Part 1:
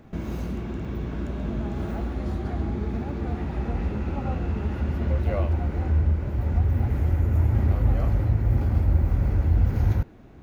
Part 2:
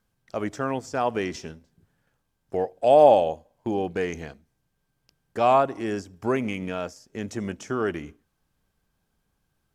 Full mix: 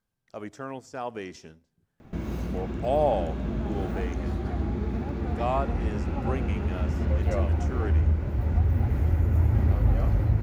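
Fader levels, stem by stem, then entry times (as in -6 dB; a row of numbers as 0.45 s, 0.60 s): -1.0 dB, -9.0 dB; 2.00 s, 0.00 s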